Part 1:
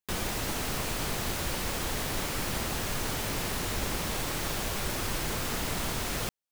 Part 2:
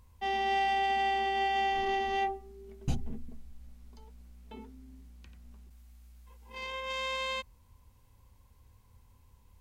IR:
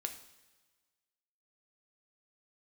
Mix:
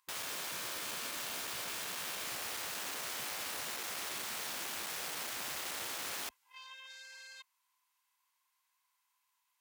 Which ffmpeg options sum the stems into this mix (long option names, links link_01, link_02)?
-filter_complex "[0:a]volume=-2dB[link_01];[1:a]highpass=frequency=1100:width=0.5412,highpass=frequency=1100:width=1.3066,volume=-5.5dB[link_02];[link_01][link_02]amix=inputs=2:normalize=0,asoftclip=type=tanh:threshold=-32.5dB,afftfilt=real='re*lt(hypot(re,im),0.0251)':imag='im*lt(hypot(re,im),0.0251)':win_size=1024:overlap=0.75,highpass=45"